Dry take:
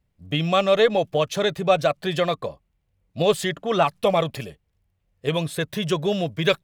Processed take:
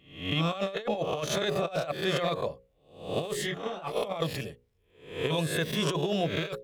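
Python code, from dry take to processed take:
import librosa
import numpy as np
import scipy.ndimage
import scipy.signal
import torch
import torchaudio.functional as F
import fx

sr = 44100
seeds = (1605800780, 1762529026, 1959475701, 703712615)

y = fx.spec_swells(x, sr, rise_s=0.53)
y = fx.hum_notches(y, sr, base_hz=60, count=9)
y = fx.over_compress(y, sr, threshold_db=-22.0, ratio=-0.5)
y = fx.detune_double(y, sr, cents=33, at=(3.32, 3.95), fade=0.02)
y = y * 10.0 ** (-6.5 / 20.0)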